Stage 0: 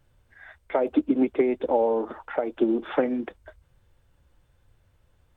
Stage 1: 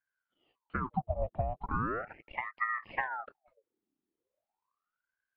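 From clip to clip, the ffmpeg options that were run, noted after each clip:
ffmpeg -i in.wav -af "afwtdn=0.02,aeval=exprs='val(0)*sin(2*PI*930*n/s+930*0.7/0.38*sin(2*PI*0.38*n/s))':channel_layout=same,volume=-8dB" out.wav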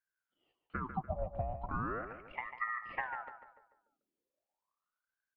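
ffmpeg -i in.wav -filter_complex "[0:a]asplit=2[link_01][link_02];[link_02]adelay=146,lowpass=frequency=2800:poles=1,volume=-8.5dB,asplit=2[link_03][link_04];[link_04]adelay=146,lowpass=frequency=2800:poles=1,volume=0.43,asplit=2[link_05][link_06];[link_06]adelay=146,lowpass=frequency=2800:poles=1,volume=0.43,asplit=2[link_07][link_08];[link_08]adelay=146,lowpass=frequency=2800:poles=1,volume=0.43,asplit=2[link_09][link_10];[link_10]adelay=146,lowpass=frequency=2800:poles=1,volume=0.43[link_11];[link_01][link_03][link_05][link_07][link_09][link_11]amix=inputs=6:normalize=0,volume=-4.5dB" out.wav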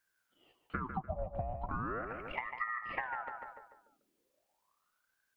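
ffmpeg -i in.wav -af "acompressor=threshold=-49dB:ratio=3,volume=11dB" out.wav

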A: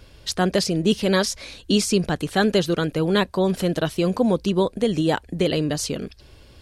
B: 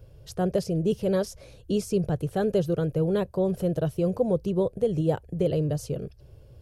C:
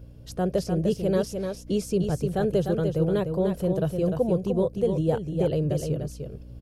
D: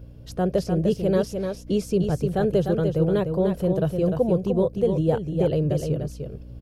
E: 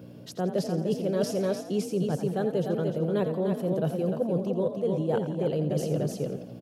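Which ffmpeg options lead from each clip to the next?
ffmpeg -i in.wav -af "equalizer=frequency=125:width_type=o:width=1:gain=11,equalizer=frequency=250:width_type=o:width=1:gain=-10,equalizer=frequency=500:width_type=o:width=1:gain=6,equalizer=frequency=1000:width_type=o:width=1:gain=-7,equalizer=frequency=2000:width_type=o:width=1:gain=-11,equalizer=frequency=4000:width_type=o:width=1:gain=-12,equalizer=frequency=8000:width_type=o:width=1:gain=-8,volume=-4dB" out.wav
ffmpeg -i in.wav -filter_complex "[0:a]aeval=exprs='val(0)+0.00501*(sin(2*PI*60*n/s)+sin(2*PI*2*60*n/s)/2+sin(2*PI*3*60*n/s)/3+sin(2*PI*4*60*n/s)/4+sin(2*PI*5*60*n/s)/5)':channel_layout=same,asplit=2[link_01][link_02];[link_02]aecho=0:1:300:0.501[link_03];[link_01][link_03]amix=inputs=2:normalize=0" out.wav
ffmpeg -i in.wav -af "equalizer=frequency=8800:width_type=o:width=1.5:gain=-5,volume=2.5dB" out.wav
ffmpeg -i in.wav -filter_complex "[0:a]highpass=frequency=150:width=0.5412,highpass=frequency=150:width=1.3066,areverse,acompressor=threshold=-29dB:ratio=10,areverse,asplit=6[link_01][link_02][link_03][link_04][link_05][link_06];[link_02]adelay=85,afreqshift=47,volume=-11dB[link_07];[link_03]adelay=170,afreqshift=94,volume=-17.7dB[link_08];[link_04]adelay=255,afreqshift=141,volume=-24.5dB[link_09];[link_05]adelay=340,afreqshift=188,volume=-31.2dB[link_10];[link_06]adelay=425,afreqshift=235,volume=-38dB[link_11];[link_01][link_07][link_08][link_09][link_10][link_11]amix=inputs=6:normalize=0,volume=5dB" out.wav

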